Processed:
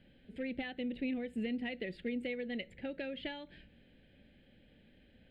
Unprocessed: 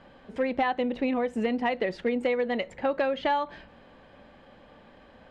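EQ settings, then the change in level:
parametric band 810 Hz −11 dB 2 octaves
phaser with its sweep stopped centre 2,600 Hz, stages 4
−4.5 dB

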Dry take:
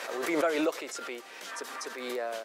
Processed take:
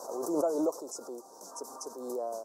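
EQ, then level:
elliptic band-stop filter 990–5,800 Hz, stop band 70 dB
0.0 dB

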